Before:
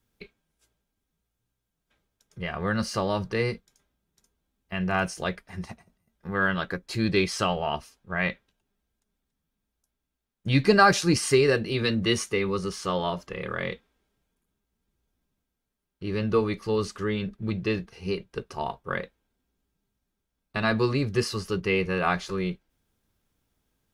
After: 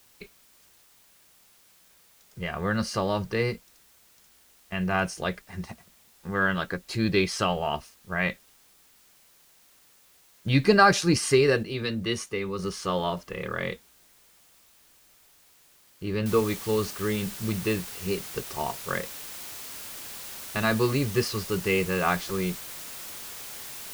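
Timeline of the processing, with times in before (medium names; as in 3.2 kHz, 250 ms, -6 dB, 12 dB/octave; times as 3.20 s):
11.63–12.59 s: gain -4.5 dB
16.26 s: noise floor step -59 dB -40 dB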